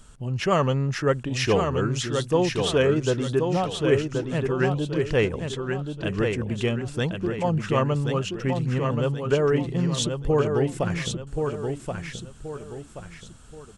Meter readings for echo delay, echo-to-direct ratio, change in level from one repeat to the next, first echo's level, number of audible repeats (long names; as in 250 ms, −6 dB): 1,078 ms, −4.5 dB, −8.5 dB, −5.0 dB, 3